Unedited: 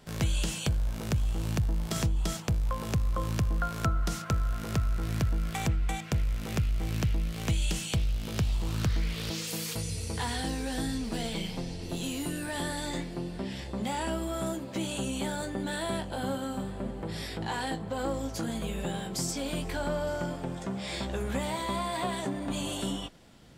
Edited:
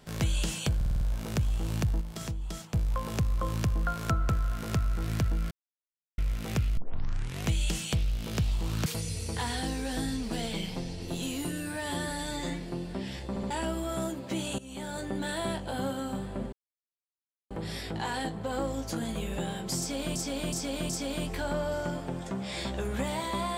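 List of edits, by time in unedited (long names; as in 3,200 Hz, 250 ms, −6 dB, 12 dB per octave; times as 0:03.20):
0:00.76: stutter 0.05 s, 6 plays
0:01.76–0:02.49: clip gain −7 dB
0:04.04–0:04.30: remove
0:05.52–0:06.19: silence
0:06.78: tape start 0.69 s
0:08.87–0:09.67: remove
0:12.32–0:13.05: time-stretch 1.5×
0:13.74: stutter in place 0.07 s, 3 plays
0:15.03–0:15.53: fade in, from −19 dB
0:16.97: splice in silence 0.98 s
0:19.25–0:19.62: repeat, 4 plays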